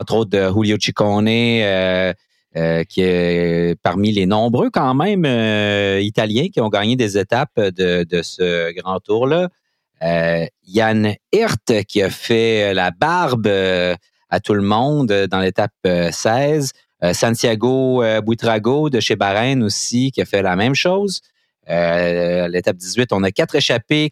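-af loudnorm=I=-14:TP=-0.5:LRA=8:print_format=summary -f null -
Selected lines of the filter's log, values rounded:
Input Integrated:    -16.9 LUFS
Input True Peak:      -1.2 dBTP
Input LRA:             1.8 LU
Input Threshold:     -27.1 LUFS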